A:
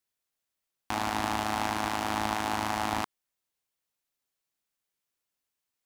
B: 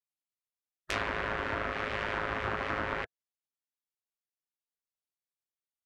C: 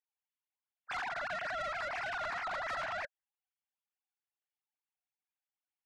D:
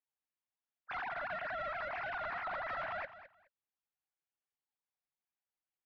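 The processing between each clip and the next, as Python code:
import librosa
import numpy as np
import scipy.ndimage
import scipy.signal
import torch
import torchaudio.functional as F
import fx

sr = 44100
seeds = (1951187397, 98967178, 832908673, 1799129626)

y1 = fx.spec_gate(x, sr, threshold_db=-10, keep='weak')
y1 = fx.leveller(y1, sr, passes=2)
y1 = fx.env_lowpass_down(y1, sr, base_hz=990.0, full_db=-24.5)
y2 = fx.sine_speech(y1, sr)
y2 = 10.0 ** (-34.0 / 20.0) * np.tanh(y2 / 10.0 ** (-34.0 / 20.0))
y3 = scipy.ndimage.gaussian_filter1d(y2, 2.5, mode='constant')
y3 = fx.echo_feedback(y3, sr, ms=211, feedback_pct=18, wet_db=-14)
y3 = y3 * librosa.db_to_amplitude(-1.0)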